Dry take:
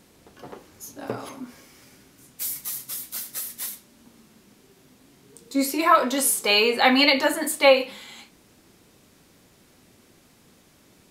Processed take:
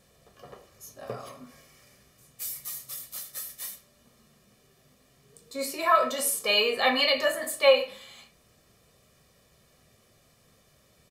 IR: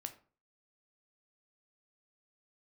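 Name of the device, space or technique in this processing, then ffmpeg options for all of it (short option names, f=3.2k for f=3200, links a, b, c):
microphone above a desk: -filter_complex "[0:a]aecho=1:1:1.7:0.68[a];[1:a]atrim=start_sample=2205[b];[a][b]afir=irnorm=-1:irlink=0,volume=-3.5dB"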